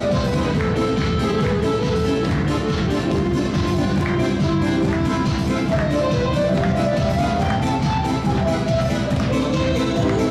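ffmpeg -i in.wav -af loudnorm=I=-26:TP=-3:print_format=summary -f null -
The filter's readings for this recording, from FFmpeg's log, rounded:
Input Integrated:    -19.9 LUFS
Input True Peak:      -9.4 dBTP
Input LRA:             0.5 LU
Input Threshold:     -29.9 LUFS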